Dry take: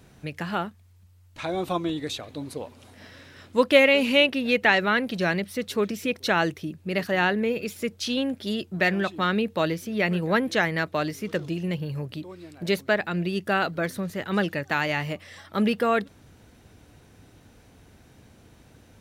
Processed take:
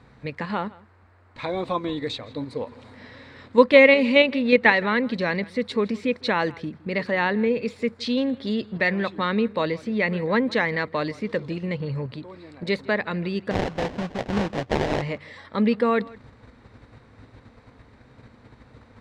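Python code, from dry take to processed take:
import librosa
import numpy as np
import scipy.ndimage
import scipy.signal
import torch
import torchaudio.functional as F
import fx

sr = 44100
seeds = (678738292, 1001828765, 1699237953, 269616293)

p1 = fx.ripple_eq(x, sr, per_octave=0.97, db=8)
p2 = fx.dmg_noise_band(p1, sr, seeds[0], low_hz=210.0, high_hz=1800.0, level_db=-61.0)
p3 = fx.level_steps(p2, sr, step_db=17)
p4 = p2 + (p3 * 10.0 ** (-1.0 / 20.0))
p5 = fx.sample_hold(p4, sr, seeds[1], rate_hz=1300.0, jitter_pct=20, at=(13.5, 15.01), fade=0.02)
p6 = fx.air_absorb(p5, sr, metres=140.0)
p7 = p6 + fx.echo_single(p6, sr, ms=163, db=-22.0, dry=0)
y = p7 * 10.0 ** (-1.0 / 20.0)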